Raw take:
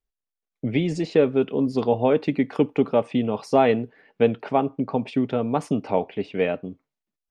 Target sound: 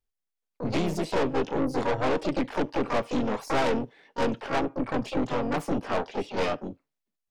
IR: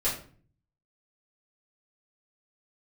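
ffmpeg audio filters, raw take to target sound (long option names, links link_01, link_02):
-filter_complex "[0:a]asplit=3[link_01][link_02][link_03];[link_02]asetrate=52444,aresample=44100,atempo=0.840896,volume=-4dB[link_04];[link_03]asetrate=88200,aresample=44100,atempo=0.5,volume=-7dB[link_05];[link_01][link_04][link_05]amix=inputs=3:normalize=0,aeval=exprs='(tanh(12.6*val(0)+0.65)-tanh(0.65))/12.6':channel_layout=same"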